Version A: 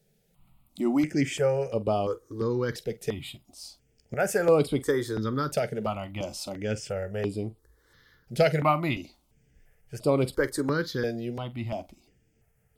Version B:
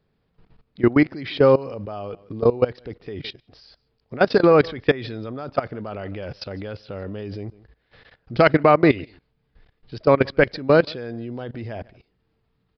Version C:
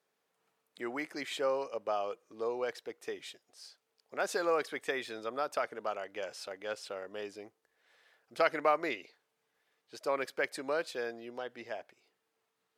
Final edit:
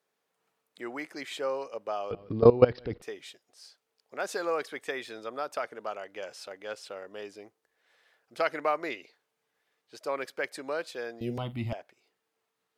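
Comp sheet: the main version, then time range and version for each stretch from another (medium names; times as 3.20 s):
C
2.11–3.02 s: from B
11.21–11.73 s: from A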